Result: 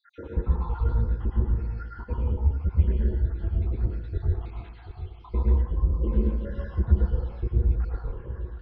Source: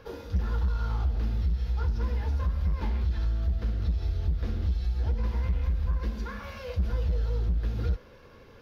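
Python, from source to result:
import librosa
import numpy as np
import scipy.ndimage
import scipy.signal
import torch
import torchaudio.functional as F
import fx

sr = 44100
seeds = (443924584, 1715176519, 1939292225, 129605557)

p1 = fx.spec_dropout(x, sr, seeds[0], share_pct=80)
p2 = fx.air_absorb(p1, sr, metres=390.0)
p3 = fx.rider(p2, sr, range_db=4, speed_s=2.0)
p4 = p2 + F.gain(torch.from_numpy(p3), 2.0).numpy()
p5 = fx.peak_eq(p4, sr, hz=360.0, db=12.5, octaves=0.43)
p6 = p5 + fx.echo_filtered(p5, sr, ms=736, feedback_pct=25, hz=2000.0, wet_db=-11.5, dry=0)
p7 = fx.rev_plate(p6, sr, seeds[1], rt60_s=0.79, hf_ratio=0.45, predelay_ms=95, drr_db=-2.5)
y = F.gain(torch.from_numpy(p7), -4.5).numpy()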